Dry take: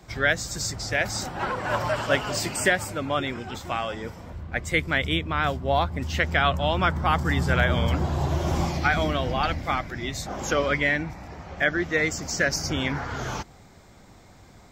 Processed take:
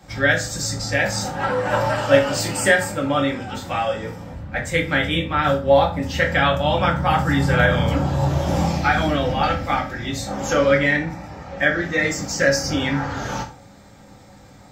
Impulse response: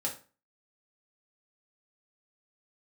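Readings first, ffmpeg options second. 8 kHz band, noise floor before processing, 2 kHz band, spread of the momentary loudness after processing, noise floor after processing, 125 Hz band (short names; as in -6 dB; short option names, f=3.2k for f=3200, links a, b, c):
+4.0 dB, -51 dBFS, +4.5 dB, 10 LU, -46 dBFS, +4.5 dB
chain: -filter_complex "[1:a]atrim=start_sample=2205[a];[0:a][a]afir=irnorm=-1:irlink=0,volume=1.5dB"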